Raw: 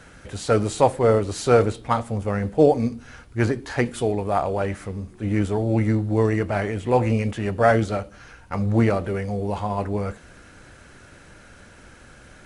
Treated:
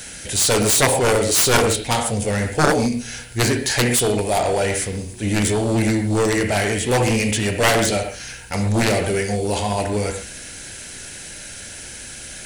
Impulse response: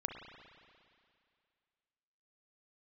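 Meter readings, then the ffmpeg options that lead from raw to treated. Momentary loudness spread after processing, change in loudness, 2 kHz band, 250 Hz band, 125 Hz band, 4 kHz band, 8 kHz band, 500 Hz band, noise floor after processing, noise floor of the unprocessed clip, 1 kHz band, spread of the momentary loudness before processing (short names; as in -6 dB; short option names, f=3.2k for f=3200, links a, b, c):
18 LU, +3.5 dB, +9.0 dB, +2.0 dB, +1.5 dB, +16.5 dB, +19.5 dB, +1.0 dB, -36 dBFS, -48 dBFS, +2.5 dB, 11 LU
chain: -filter_complex "[0:a]crystalizer=i=9:c=0,equalizer=f=1.2k:w=2.6:g=-12.5[a];[1:a]atrim=start_sample=2205,atrim=end_sample=6615[b];[a][b]afir=irnorm=-1:irlink=0,aeval=exprs='1.06*(cos(1*acos(clip(val(0)/1.06,-1,1)))-cos(1*PI/2))+0.531*(cos(7*acos(clip(val(0)/1.06,-1,1)))-cos(7*PI/2))':c=same,volume=-3dB"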